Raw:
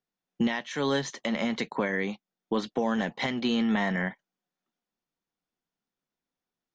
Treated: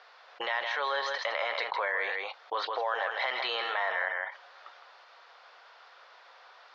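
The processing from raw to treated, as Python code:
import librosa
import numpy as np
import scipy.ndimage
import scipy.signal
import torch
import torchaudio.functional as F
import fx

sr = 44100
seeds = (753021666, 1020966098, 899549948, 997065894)

p1 = scipy.signal.sosfilt(scipy.signal.ellip(3, 1.0, 40, [540.0, 4600.0], 'bandpass', fs=sr, output='sos'), x)
p2 = fx.peak_eq(p1, sr, hz=1200.0, db=8.5, octaves=1.3)
p3 = p2 + fx.echo_single(p2, sr, ms=160, db=-10.0, dry=0)
p4 = fx.env_flatten(p3, sr, amount_pct=70)
y = p4 * 10.0 ** (-5.5 / 20.0)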